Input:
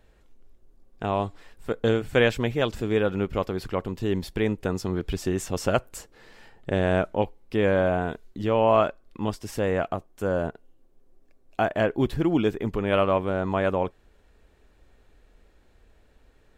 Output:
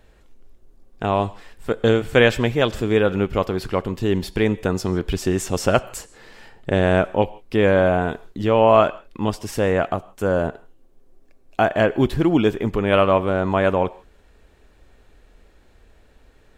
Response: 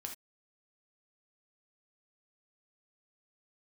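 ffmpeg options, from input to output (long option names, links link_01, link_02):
-filter_complex "[0:a]asplit=2[link_01][link_02];[1:a]atrim=start_sample=2205,asetrate=22491,aresample=44100,lowshelf=frequency=440:gain=-11.5[link_03];[link_02][link_03]afir=irnorm=-1:irlink=0,volume=-14.5dB[link_04];[link_01][link_04]amix=inputs=2:normalize=0,volume=5dB"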